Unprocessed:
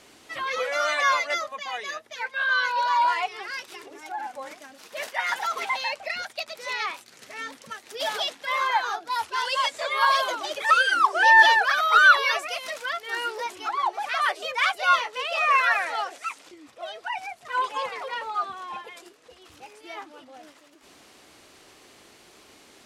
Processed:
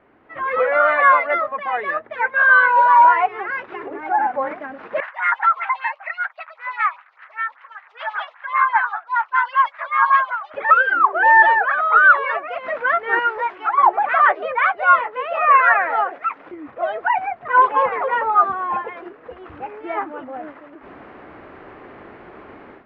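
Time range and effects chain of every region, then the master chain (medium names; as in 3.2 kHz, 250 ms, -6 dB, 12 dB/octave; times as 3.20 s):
5.00–10.54 s: high-pass 1.1 kHz 24 dB/octave + lamp-driven phase shifter 5.1 Hz
13.19–13.78 s: high-pass 1.3 kHz 6 dB/octave + careless resampling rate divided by 3×, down none, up zero stuff
whole clip: low-pass 1.8 kHz 24 dB/octave; level rider gain up to 16 dB; trim -1 dB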